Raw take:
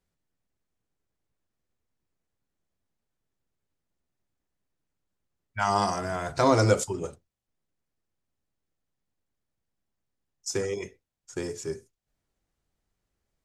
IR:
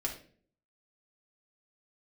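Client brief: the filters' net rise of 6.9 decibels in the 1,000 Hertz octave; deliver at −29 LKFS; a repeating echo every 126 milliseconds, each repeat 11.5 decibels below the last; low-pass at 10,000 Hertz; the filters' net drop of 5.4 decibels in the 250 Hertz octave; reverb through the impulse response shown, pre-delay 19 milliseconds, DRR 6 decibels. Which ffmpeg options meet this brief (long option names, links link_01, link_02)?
-filter_complex "[0:a]lowpass=10000,equalizer=frequency=250:width_type=o:gain=-8,equalizer=frequency=1000:width_type=o:gain=9,aecho=1:1:126|252|378:0.266|0.0718|0.0194,asplit=2[link_01][link_02];[1:a]atrim=start_sample=2205,adelay=19[link_03];[link_02][link_03]afir=irnorm=-1:irlink=0,volume=-8.5dB[link_04];[link_01][link_04]amix=inputs=2:normalize=0,volume=-7dB"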